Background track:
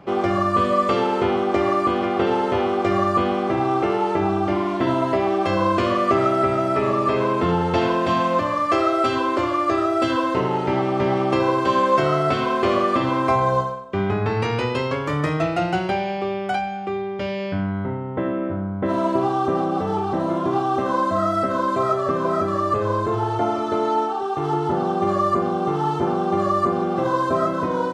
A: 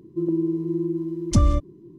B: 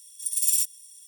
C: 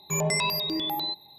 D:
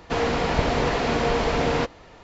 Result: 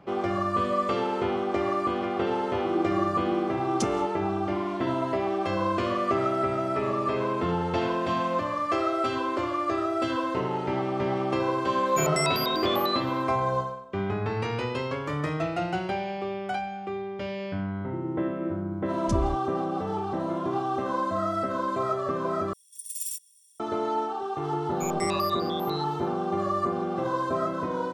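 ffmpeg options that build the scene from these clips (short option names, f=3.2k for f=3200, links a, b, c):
-filter_complex "[1:a]asplit=2[a][b];[3:a]asplit=2[c][d];[0:a]volume=-7dB[e];[a]highpass=300[f];[d]tremolo=f=160:d=0.974[g];[e]asplit=2[h][i];[h]atrim=end=22.534[j];[2:a]atrim=end=1.07,asetpts=PTS-STARTPTS,volume=-11dB[k];[i]atrim=start=23.596[l];[f]atrim=end=1.98,asetpts=PTS-STARTPTS,volume=-3dB,afade=t=in:d=0.004:c=hsin,afade=t=out:st=1.976:d=0.004:c=hsin,adelay=2470[m];[c]atrim=end=1.38,asetpts=PTS-STARTPTS,volume=-2dB,afade=t=in:d=0.004:c=hsin,afade=t=out:st=1.376:d=0.004:c=hsin,adelay=523026S[n];[b]atrim=end=1.98,asetpts=PTS-STARTPTS,volume=-10dB,afade=t=in:d=0.004:c=hsin,afade=t=out:st=1.976:d=0.004:c=hsin,adelay=17760[o];[g]atrim=end=1.38,asetpts=PTS-STARTPTS,volume=-4.5dB,afade=t=in:d=0.004:c=hsin,afade=t=out:st=1.376:d=0.004:c=hsin,adelay=24700[p];[j][k]acrossfade=d=0.004:c1=hsin:c2=hsin[q];[q][l]acrossfade=d=0.004:c1=hsin:c2=hsin[r];[r][m][n][o][p]amix=inputs=5:normalize=0"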